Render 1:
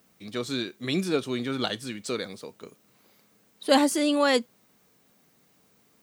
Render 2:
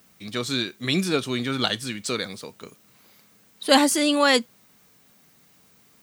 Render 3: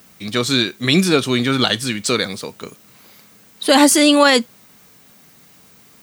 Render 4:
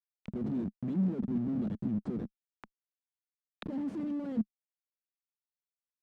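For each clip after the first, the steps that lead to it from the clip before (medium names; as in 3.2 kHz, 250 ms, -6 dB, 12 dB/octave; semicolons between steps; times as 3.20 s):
peaking EQ 420 Hz -6 dB 2.2 oct; trim +7 dB
loudness maximiser +10 dB; trim -1 dB
Schmitt trigger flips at -18 dBFS; auto-wah 210–3000 Hz, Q 4.1, down, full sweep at -22.5 dBFS; trim -4.5 dB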